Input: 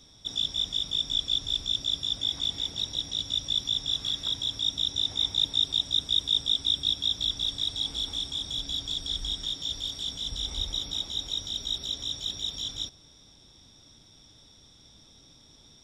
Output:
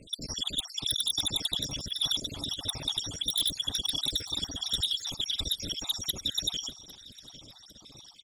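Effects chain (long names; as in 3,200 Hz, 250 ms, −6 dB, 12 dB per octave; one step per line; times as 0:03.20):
time-frequency cells dropped at random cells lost 72%
low-shelf EQ 64 Hz −7.5 dB
sine wavefolder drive 14 dB, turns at −13 dBFS
time stretch by overlap-add 0.52×, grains 32 ms
on a send: repeating echo 803 ms, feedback 42%, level −20.5 dB
on the sum: level −7.5 dB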